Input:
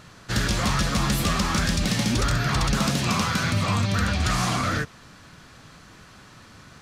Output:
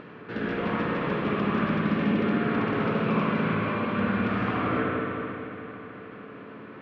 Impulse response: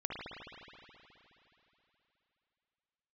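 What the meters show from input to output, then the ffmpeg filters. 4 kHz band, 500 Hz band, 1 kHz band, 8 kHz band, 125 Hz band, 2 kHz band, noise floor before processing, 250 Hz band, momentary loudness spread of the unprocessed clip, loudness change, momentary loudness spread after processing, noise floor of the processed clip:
−14.5 dB, +4.5 dB, −2.0 dB, below −40 dB, −7.0 dB, −3.0 dB, −49 dBFS, +1.5 dB, 2 LU, −3.5 dB, 17 LU, −44 dBFS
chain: -filter_complex "[0:a]highpass=210,equalizer=frequency=210:width_type=q:width=4:gain=3,equalizer=frequency=300:width_type=q:width=4:gain=5,equalizer=frequency=440:width_type=q:width=4:gain=8,equalizer=frequency=770:width_type=q:width=4:gain=-5,equalizer=frequency=1300:width_type=q:width=4:gain=-4,equalizer=frequency=1900:width_type=q:width=4:gain=-4,lowpass=frequency=2400:width=0.5412,lowpass=frequency=2400:width=1.3066[link_01];[1:a]atrim=start_sample=2205,asetrate=41895,aresample=44100[link_02];[link_01][link_02]afir=irnorm=-1:irlink=0,acompressor=mode=upward:threshold=-32dB:ratio=2.5,volume=-3dB"

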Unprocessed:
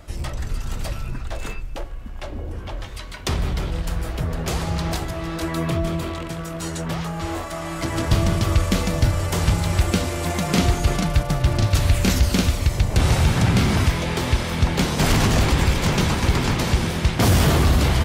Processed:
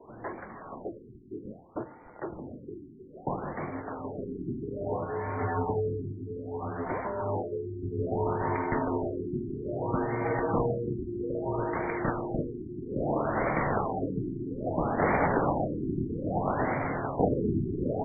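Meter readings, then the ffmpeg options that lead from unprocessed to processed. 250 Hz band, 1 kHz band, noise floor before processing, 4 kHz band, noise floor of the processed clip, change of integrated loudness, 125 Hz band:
−8.0 dB, −3.5 dB, −32 dBFS, below −40 dB, −50 dBFS, −10.0 dB, −15.0 dB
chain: -af "equalizer=frequency=250:width_type=o:width=1:gain=-9,equalizer=frequency=500:width_type=o:width=1:gain=5,equalizer=frequency=1000:width_type=o:width=1:gain=6,highpass=frequency=280:width_type=q:width=0.5412,highpass=frequency=280:width_type=q:width=1.307,lowpass=frequency=3600:width_type=q:width=0.5176,lowpass=frequency=3600:width_type=q:width=0.7071,lowpass=frequency=3600:width_type=q:width=1.932,afreqshift=-230,adynamicequalizer=threshold=0.00631:dfrequency=110:dqfactor=1.9:tfrequency=110:tqfactor=1.9:attack=5:release=100:ratio=0.375:range=2:mode=boostabove:tftype=bell,afftfilt=real='re*lt(b*sr/1024,390*pow(2400/390,0.5+0.5*sin(2*PI*0.61*pts/sr)))':imag='im*lt(b*sr/1024,390*pow(2400/390,0.5+0.5*sin(2*PI*0.61*pts/sr)))':win_size=1024:overlap=0.75,volume=-4.5dB"

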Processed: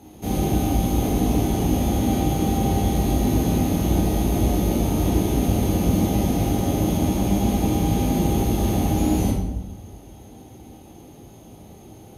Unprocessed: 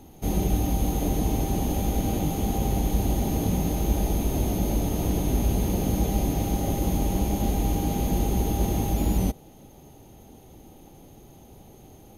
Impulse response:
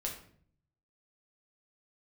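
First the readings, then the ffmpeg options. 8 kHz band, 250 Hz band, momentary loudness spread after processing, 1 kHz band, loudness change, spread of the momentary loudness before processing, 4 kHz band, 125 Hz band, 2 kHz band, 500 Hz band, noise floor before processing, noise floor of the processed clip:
+3.0 dB, +6.0 dB, 1 LU, +4.5 dB, +4.5 dB, 1 LU, +5.0 dB, +4.5 dB, +5.0 dB, +5.0 dB, −50 dBFS, −45 dBFS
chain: -filter_complex "[0:a]highpass=69[link_01];[1:a]atrim=start_sample=2205,asetrate=25137,aresample=44100[link_02];[link_01][link_02]afir=irnorm=-1:irlink=0"

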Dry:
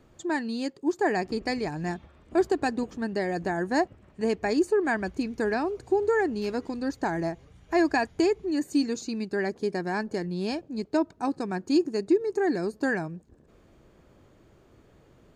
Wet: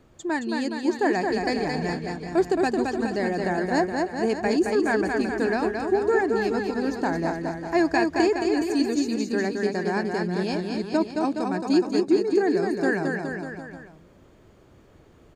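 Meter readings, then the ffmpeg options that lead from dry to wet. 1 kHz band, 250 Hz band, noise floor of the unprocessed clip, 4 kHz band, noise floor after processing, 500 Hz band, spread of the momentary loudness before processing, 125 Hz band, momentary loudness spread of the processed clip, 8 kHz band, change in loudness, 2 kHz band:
+3.5 dB, +3.5 dB, −58 dBFS, +3.5 dB, −54 dBFS, +3.5 dB, 7 LU, +4.0 dB, 6 LU, +3.5 dB, +3.5 dB, +3.5 dB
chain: -af "aecho=1:1:220|418|596.2|756.6|900.9:0.631|0.398|0.251|0.158|0.1,volume=1.5dB"

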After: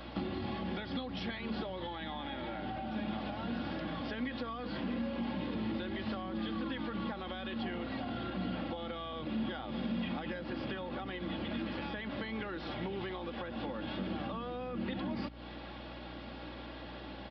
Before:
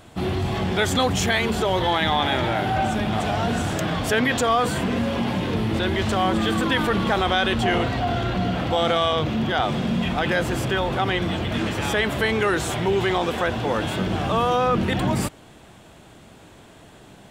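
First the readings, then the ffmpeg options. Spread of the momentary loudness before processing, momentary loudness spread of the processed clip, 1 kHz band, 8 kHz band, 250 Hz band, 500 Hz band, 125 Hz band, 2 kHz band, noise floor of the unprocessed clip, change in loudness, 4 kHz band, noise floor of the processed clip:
4 LU, 7 LU, −19.0 dB, below −40 dB, −12.0 dB, −18.0 dB, −18.5 dB, −18.5 dB, −48 dBFS, −16.5 dB, −18.0 dB, −46 dBFS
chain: -filter_complex "[0:a]highpass=180,aecho=1:1:3.6:0.52,acompressor=threshold=-32dB:ratio=6,aeval=exprs='val(0)+0.00282*(sin(2*PI*60*n/s)+sin(2*PI*2*60*n/s)/2+sin(2*PI*3*60*n/s)/3+sin(2*PI*4*60*n/s)/4+sin(2*PI*5*60*n/s)/5)':channel_layout=same,aresample=11025,aresample=44100,acrossover=split=260[link_01][link_02];[link_02]acompressor=threshold=-41dB:ratio=6[link_03];[link_01][link_03]amix=inputs=2:normalize=0,volume=1dB"

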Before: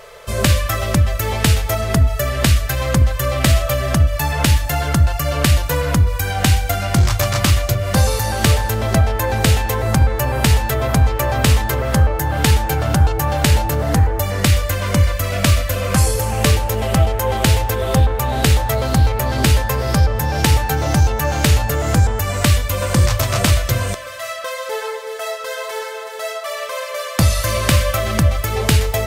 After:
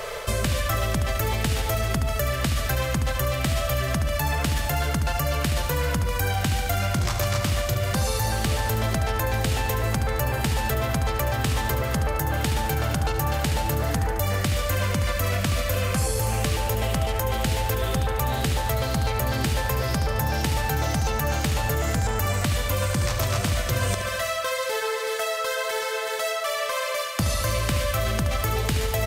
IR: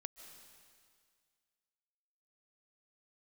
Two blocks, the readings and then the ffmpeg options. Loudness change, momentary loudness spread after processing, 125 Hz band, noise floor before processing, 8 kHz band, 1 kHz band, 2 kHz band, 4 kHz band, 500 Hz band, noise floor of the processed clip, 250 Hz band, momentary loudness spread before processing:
−7.5 dB, 2 LU, −9.0 dB, −28 dBFS, −7.0 dB, −5.5 dB, −5.5 dB, −6.5 dB, −6.0 dB, −28 dBFS, −8.5 dB, 9 LU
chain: -filter_complex "[0:a]areverse,acompressor=threshold=-22dB:ratio=6,areverse,aecho=1:1:72|144|216|288|360|432:0.316|0.171|0.0922|0.0498|0.0269|0.0145,acrossover=split=210|1300[link_01][link_02][link_03];[link_01]acompressor=threshold=-32dB:ratio=4[link_04];[link_02]acompressor=threshold=-37dB:ratio=4[link_05];[link_03]acompressor=threshold=-37dB:ratio=4[link_06];[link_04][link_05][link_06]amix=inputs=3:normalize=0,volume=7.5dB"

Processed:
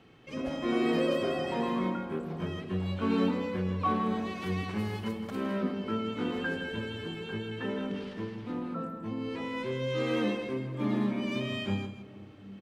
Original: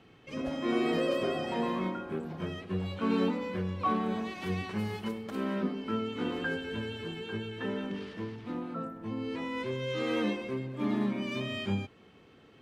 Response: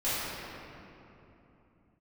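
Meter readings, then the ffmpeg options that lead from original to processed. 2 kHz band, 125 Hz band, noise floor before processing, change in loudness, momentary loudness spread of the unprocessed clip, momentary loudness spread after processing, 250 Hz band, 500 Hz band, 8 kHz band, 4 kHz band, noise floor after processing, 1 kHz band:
+0.5 dB, +2.0 dB, −58 dBFS, +1.0 dB, 9 LU, 9 LU, +1.5 dB, +1.0 dB, can't be measured, +0.5 dB, −48 dBFS, +1.0 dB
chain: -filter_complex "[0:a]aecho=1:1:162:0.299,asplit=2[link_01][link_02];[1:a]atrim=start_sample=2205,lowpass=1200[link_03];[link_02][link_03]afir=irnorm=-1:irlink=0,volume=-22.5dB[link_04];[link_01][link_04]amix=inputs=2:normalize=0"

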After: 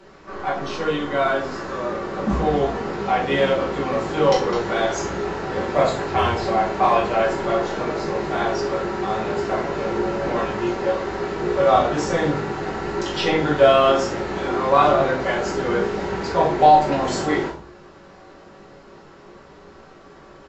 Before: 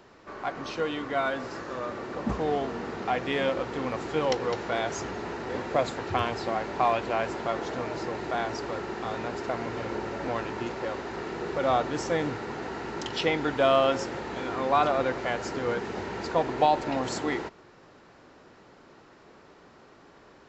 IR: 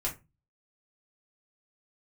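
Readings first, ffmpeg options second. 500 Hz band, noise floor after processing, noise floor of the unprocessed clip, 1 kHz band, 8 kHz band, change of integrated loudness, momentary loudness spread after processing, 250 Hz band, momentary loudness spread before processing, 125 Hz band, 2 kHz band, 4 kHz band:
+8.5 dB, −46 dBFS, −55 dBFS, +8.5 dB, can't be measured, +8.5 dB, 10 LU, +8.0 dB, 10 LU, +8.5 dB, +6.5 dB, +6.5 dB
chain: -filter_complex "[0:a]asplit=2[link_01][link_02];[link_02]adelay=20,volume=-12dB[link_03];[link_01][link_03]amix=inputs=2:normalize=0[link_04];[1:a]atrim=start_sample=2205,asetrate=24255,aresample=44100[link_05];[link_04][link_05]afir=irnorm=-1:irlink=0,volume=-1dB"

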